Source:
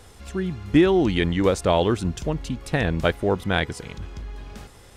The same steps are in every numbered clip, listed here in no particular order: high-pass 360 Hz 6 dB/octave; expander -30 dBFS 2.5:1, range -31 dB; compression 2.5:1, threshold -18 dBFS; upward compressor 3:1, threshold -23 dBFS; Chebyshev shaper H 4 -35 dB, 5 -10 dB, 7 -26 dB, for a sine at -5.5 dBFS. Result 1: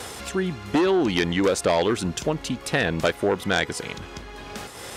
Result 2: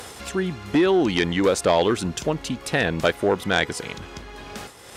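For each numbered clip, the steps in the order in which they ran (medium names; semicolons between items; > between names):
Chebyshev shaper > upward compressor > expander > high-pass > compression; compression > Chebyshev shaper > expander > upward compressor > high-pass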